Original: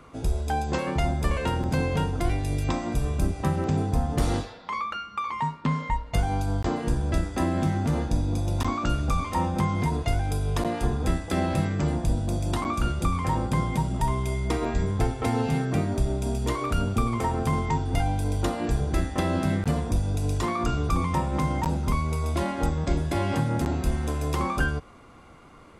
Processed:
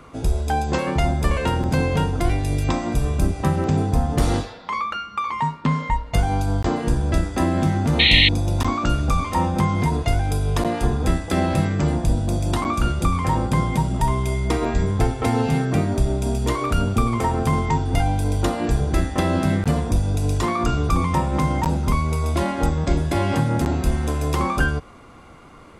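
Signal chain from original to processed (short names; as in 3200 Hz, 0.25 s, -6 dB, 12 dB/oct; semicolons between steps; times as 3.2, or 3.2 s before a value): painted sound noise, 7.99–8.29, 1800–4300 Hz -20 dBFS; gain +5 dB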